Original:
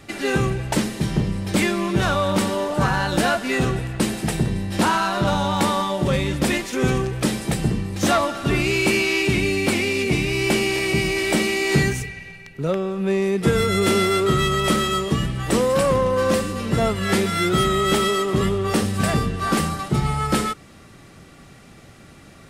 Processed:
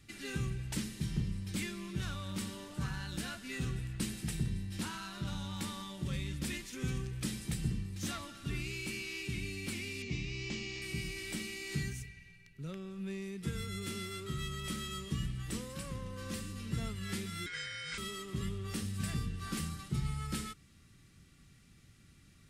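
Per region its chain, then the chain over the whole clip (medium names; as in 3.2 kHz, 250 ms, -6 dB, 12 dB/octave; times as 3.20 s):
10.02–10.82 s: steep low-pass 7 kHz 48 dB/octave + band-stop 1.5 kHz, Q 5.2
17.46–17.98 s: careless resampling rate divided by 3×, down none, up filtered + ring modulator 1.8 kHz
whole clip: gain riding 0.5 s; amplifier tone stack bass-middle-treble 6-0-2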